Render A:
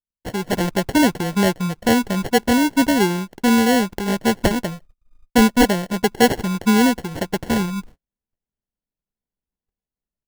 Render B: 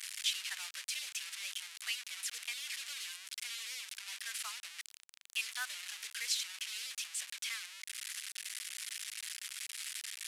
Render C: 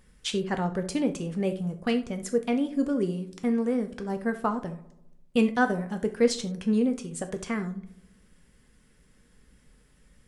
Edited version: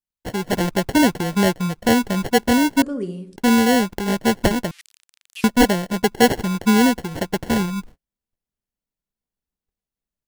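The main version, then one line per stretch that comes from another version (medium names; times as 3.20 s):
A
2.82–3.36 s: from C
4.71–5.44 s: from B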